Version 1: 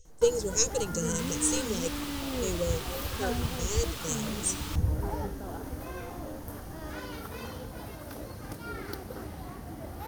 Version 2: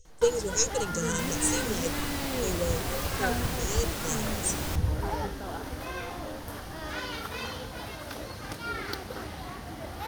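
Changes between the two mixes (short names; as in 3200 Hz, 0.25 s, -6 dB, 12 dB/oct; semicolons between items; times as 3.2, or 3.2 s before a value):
first sound: add EQ curve 300 Hz 0 dB, 3600 Hz +11 dB, 14000 Hz -1 dB; second sound: remove rippled Chebyshev high-pass 860 Hz, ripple 6 dB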